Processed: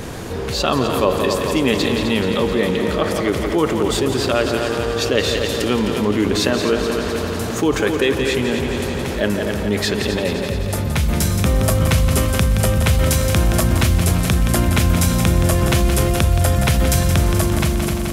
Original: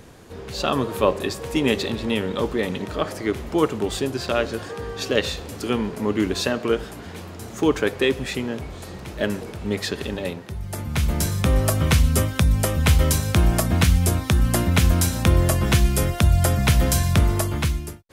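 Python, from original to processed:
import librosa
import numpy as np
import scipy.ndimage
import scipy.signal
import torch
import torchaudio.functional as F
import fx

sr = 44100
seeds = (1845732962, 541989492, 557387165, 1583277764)

p1 = x + fx.echo_heads(x, sr, ms=86, heads='second and third', feedback_pct=64, wet_db=-9.5, dry=0)
p2 = fx.env_flatten(p1, sr, amount_pct=50)
y = p2 * librosa.db_to_amplitude(-1.0)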